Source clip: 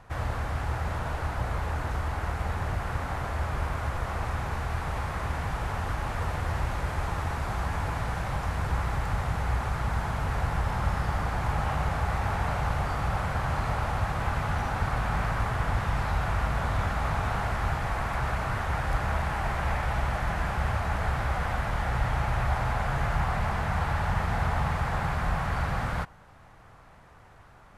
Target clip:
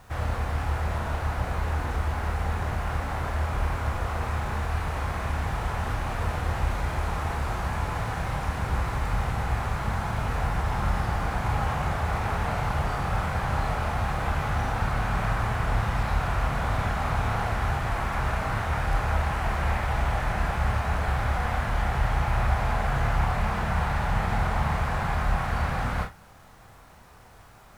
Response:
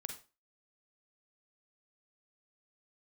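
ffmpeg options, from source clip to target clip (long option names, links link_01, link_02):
-filter_complex "[0:a]acrusher=bits=9:mix=0:aa=0.000001[link_01];[1:a]atrim=start_sample=2205,asetrate=74970,aresample=44100[link_02];[link_01][link_02]afir=irnorm=-1:irlink=0,volume=9dB"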